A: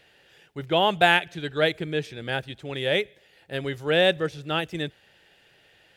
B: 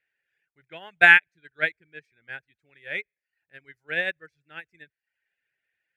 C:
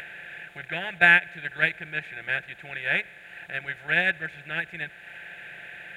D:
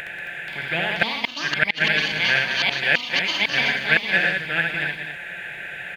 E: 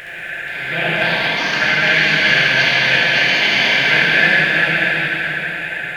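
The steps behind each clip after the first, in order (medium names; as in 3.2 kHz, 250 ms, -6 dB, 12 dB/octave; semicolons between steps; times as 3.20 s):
reverb removal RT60 0.61 s; high-order bell 1.9 kHz +14.5 dB 1 oct; upward expansion 2.5:1, over -25 dBFS; trim -3.5 dB
spectral levelling over time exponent 0.4; tone controls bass +10 dB, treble 0 dB; upward compressor, threshold -33 dBFS; trim -4.5 dB
loudspeakers at several distances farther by 23 m -3 dB, 64 m -7 dB, 93 m -8 dB; inverted gate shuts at -10 dBFS, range -37 dB; ever faster or slower copies 481 ms, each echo +5 st, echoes 2; trim +6 dB
plate-style reverb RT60 4 s, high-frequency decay 0.85×, DRR -9 dB; trim -2 dB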